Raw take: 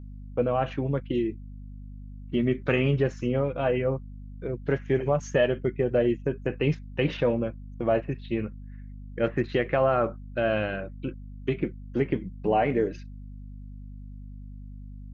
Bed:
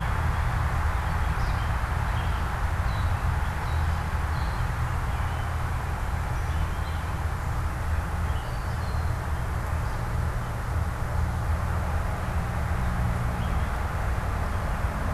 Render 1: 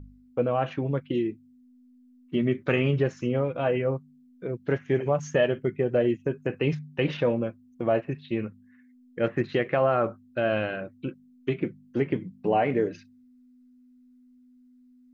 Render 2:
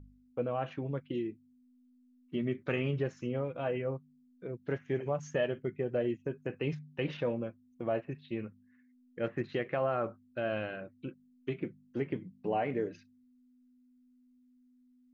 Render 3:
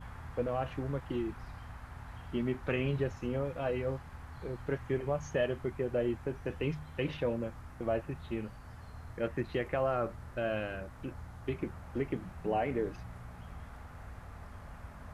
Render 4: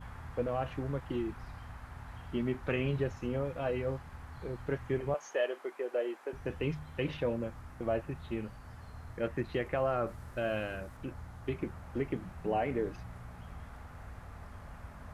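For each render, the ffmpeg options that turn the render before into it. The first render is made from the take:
-af "bandreject=f=50:t=h:w=4,bandreject=f=100:t=h:w=4,bandreject=f=150:t=h:w=4,bandreject=f=200:t=h:w=4"
-af "volume=0.376"
-filter_complex "[1:a]volume=0.1[s0];[0:a][s0]amix=inputs=2:normalize=0"
-filter_complex "[0:a]asettb=1/sr,asplit=3[s0][s1][s2];[s0]atrim=end=5.144[s3];[s1]atrim=start=5.14:end=6.33,asetpts=PTS-STARTPTS,afade=t=in:d=0.004:c=qsin,afade=t=out:st=1.186:d=0.004:c=qsin,highpass=f=380:w=0.5412,highpass=f=380:w=1.3066[s4];[s2]atrim=start=6.326[s5];[s3][s4]acrossfade=d=0.004:c1=hsin:c2=qsin[s6];[s6][s5]acrossfade=d=0.004:c1=qsin:c2=hsin,asettb=1/sr,asplit=3[s7][s8][s9];[s7]atrim=end=10.074[s10];[s8]atrim=start=10.07:end=10.97,asetpts=PTS-STARTPTS,afade=t=in:d=0.004:c=qsin,afade=t=out:st=0.896:d=0.004:c=qsin,highshelf=f=5600:g=6.5[s11];[s9]atrim=start=10.966[s12];[s10][s11]acrossfade=d=0.004:c1=hsin:c2=qsin[s13];[s13][s12]acrossfade=d=0.004:c1=qsin:c2=hsin"

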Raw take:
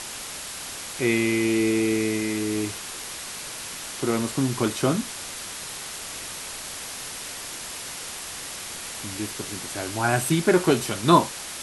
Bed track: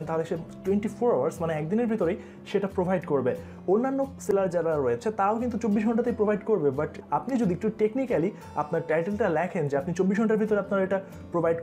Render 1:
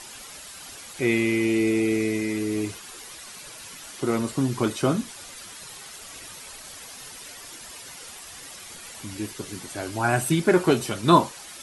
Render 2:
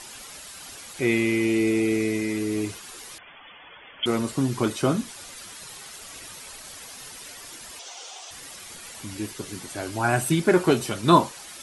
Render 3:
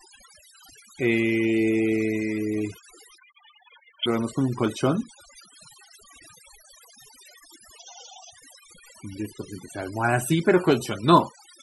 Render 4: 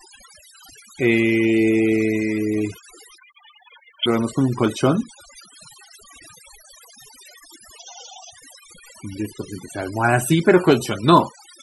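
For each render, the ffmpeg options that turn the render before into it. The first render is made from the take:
-af "afftdn=nr=10:nf=-36"
-filter_complex "[0:a]asettb=1/sr,asplit=3[s0][s1][s2];[s0]atrim=end=3.184[s3];[s1]atrim=start=3.18:end=4.06,asetpts=PTS-STARTPTS,afade=t=in:d=0.004:c=qsin,afade=t=out:st=0.876:d=0.004:c=qsin,lowpass=f=3000:t=q:w=0.5098,lowpass=f=3000:t=q:w=0.6013,lowpass=f=3000:t=q:w=0.9,lowpass=f=3000:t=q:w=2.563,afreqshift=-3500[s4];[s2]atrim=start=4.056[s5];[s3][s4]acrossfade=d=0.004:c1=hsin:c2=qsin[s6];[s6][s5]acrossfade=d=0.004:c1=qsin:c2=hsin,asettb=1/sr,asplit=3[s7][s8][s9];[s7]atrim=end=7.794[s10];[s8]atrim=start=7.79:end=8.31,asetpts=PTS-STARTPTS,afade=t=in:d=0.004:c=qsin,afade=t=out:st=0.516:d=0.004:c=qsin,highpass=f=380:w=0.5412,highpass=f=380:w=1.3066,equalizer=f=740:t=q:w=4:g=10,equalizer=f=1800:t=q:w=4:g=-6,equalizer=f=3300:t=q:w=4:g=6,equalizer=f=6100:t=q:w=4:g=6,lowpass=f=7700:w=0.5412,lowpass=f=7700:w=1.3066[s11];[s9]atrim=start=8.306[s12];[s10][s11]acrossfade=d=0.004:c1=hsin:c2=qsin[s13];[s13][s12]acrossfade=d=0.004:c1=qsin:c2=hsin"
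-af "afftfilt=real='re*gte(hypot(re,im),0.0178)':imag='im*gte(hypot(re,im),0.0178)':win_size=1024:overlap=0.75,adynamicequalizer=threshold=0.00112:dfrequency=9500:dqfactor=3.2:tfrequency=9500:tqfactor=3.2:attack=5:release=100:ratio=0.375:range=2.5:mode=cutabove:tftype=bell"
-af "volume=1.78,alimiter=limit=0.891:level=0:latency=1"

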